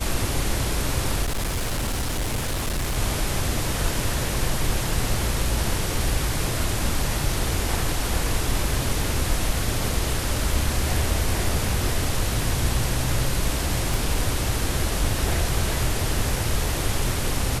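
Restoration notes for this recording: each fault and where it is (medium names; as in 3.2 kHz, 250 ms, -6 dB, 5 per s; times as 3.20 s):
1.22–2.97 s: clipped -21.5 dBFS
13.94 s: pop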